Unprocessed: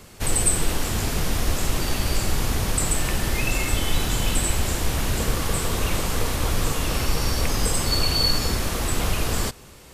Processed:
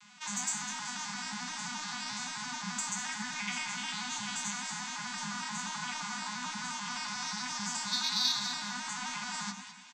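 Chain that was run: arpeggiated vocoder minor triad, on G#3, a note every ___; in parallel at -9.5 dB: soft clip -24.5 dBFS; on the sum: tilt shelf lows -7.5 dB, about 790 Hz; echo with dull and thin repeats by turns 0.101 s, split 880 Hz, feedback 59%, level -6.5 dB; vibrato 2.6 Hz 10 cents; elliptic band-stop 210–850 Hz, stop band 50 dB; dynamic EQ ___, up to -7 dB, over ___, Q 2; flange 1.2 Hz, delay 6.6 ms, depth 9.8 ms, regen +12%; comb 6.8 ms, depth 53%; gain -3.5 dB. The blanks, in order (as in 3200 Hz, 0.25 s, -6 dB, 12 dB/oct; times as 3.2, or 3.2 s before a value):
87 ms, 2800 Hz, -42 dBFS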